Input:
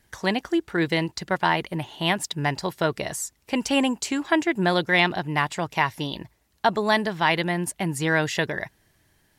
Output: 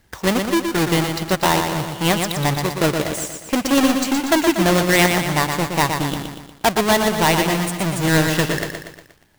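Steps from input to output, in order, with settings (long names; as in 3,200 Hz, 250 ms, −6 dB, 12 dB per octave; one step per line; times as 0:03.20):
each half-wave held at its own peak
feedback echo at a low word length 119 ms, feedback 55%, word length 8 bits, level −5.5 dB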